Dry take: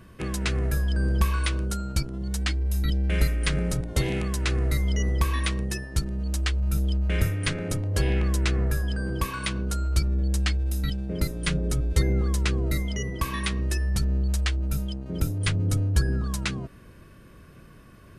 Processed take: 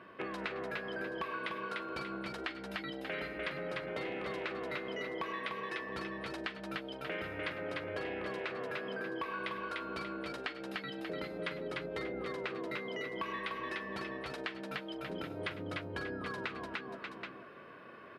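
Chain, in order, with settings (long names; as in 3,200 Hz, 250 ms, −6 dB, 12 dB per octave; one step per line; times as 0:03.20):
high-pass filter 480 Hz 12 dB per octave
high-frequency loss of the air 410 metres
multi-tap delay 42/101/297/585/777 ms −15/−18.5/−3.5/−13.5/−14 dB
downward compressor 4 to 1, threshold −43 dBFS, peak gain reduction 12 dB
level +5.5 dB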